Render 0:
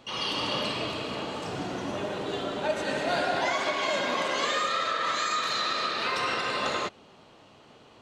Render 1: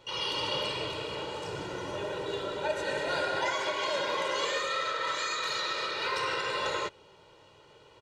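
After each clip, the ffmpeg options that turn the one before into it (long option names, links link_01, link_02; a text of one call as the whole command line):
ffmpeg -i in.wav -af "aecho=1:1:2.1:0.76,volume=-4.5dB" out.wav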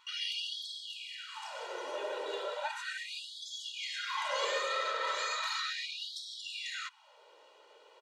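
ffmpeg -i in.wav -af "lowshelf=frequency=370:width_type=q:width=1.5:gain=-10.5,afftfilt=real='re*gte(b*sr/1024,220*pow(3200/220,0.5+0.5*sin(2*PI*0.36*pts/sr)))':imag='im*gte(b*sr/1024,220*pow(3200/220,0.5+0.5*sin(2*PI*0.36*pts/sr)))':win_size=1024:overlap=0.75,volume=-3dB" out.wav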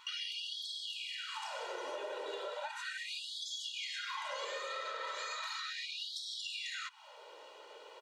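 ffmpeg -i in.wav -af "acompressor=threshold=-45dB:ratio=6,volume=6dB" out.wav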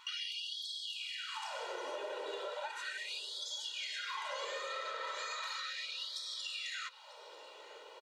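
ffmpeg -i in.wav -af "aecho=1:1:942|1884|2826:0.1|0.041|0.0168" out.wav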